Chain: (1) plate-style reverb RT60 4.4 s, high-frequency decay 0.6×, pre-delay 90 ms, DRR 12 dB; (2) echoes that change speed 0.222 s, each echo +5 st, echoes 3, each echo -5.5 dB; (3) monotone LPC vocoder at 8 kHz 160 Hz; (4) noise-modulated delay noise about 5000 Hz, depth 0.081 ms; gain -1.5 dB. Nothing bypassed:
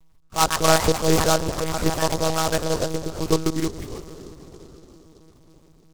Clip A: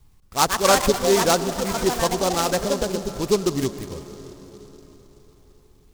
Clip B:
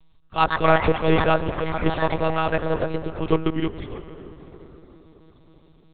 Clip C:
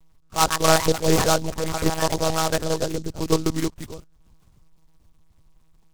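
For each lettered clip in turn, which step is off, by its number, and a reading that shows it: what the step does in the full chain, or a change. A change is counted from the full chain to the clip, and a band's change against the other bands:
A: 3, 125 Hz band -5.0 dB; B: 4, 4 kHz band -7.5 dB; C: 1, momentary loudness spread change -6 LU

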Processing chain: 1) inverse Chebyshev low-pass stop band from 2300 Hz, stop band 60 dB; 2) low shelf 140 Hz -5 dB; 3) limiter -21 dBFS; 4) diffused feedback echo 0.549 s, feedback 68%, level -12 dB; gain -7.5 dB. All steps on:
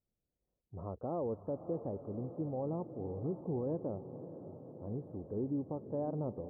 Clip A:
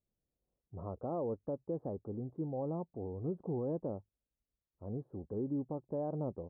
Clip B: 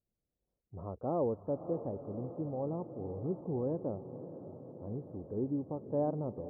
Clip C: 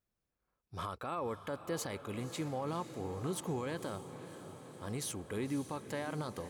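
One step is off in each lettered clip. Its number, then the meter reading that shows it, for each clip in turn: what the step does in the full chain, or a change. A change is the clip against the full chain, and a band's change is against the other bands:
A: 4, echo-to-direct -9.5 dB to none; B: 3, crest factor change +3.0 dB; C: 1, 1 kHz band +7.0 dB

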